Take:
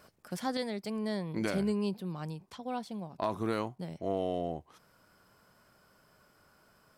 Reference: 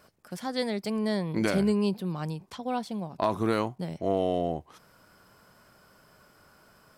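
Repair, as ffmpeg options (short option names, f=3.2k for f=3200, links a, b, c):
-af "asetnsamples=n=441:p=0,asendcmd='0.57 volume volume 6dB',volume=0dB"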